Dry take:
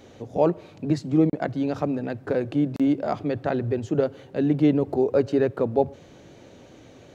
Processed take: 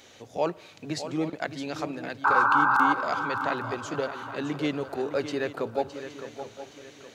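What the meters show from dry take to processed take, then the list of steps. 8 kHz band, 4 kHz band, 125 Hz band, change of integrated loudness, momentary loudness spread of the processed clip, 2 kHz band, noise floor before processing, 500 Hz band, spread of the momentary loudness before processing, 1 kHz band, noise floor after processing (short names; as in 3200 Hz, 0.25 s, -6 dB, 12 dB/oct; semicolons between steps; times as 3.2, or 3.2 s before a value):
n/a, +6.0 dB, -11.5 dB, -3.0 dB, 19 LU, +12.0 dB, -49 dBFS, -7.0 dB, 7 LU, +8.0 dB, -52 dBFS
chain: tilt shelf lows -9.5 dB, about 870 Hz; painted sound noise, 2.24–2.93, 770–1600 Hz -18 dBFS; swung echo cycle 0.818 s, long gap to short 3:1, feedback 35%, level -10.5 dB; gain -3 dB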